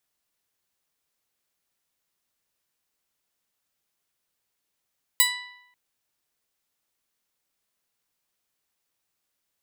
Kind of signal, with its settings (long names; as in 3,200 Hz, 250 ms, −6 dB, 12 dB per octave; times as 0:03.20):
Karplus-Strong string B5, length 0.54 s, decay 0.86 s, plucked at 0.19, bright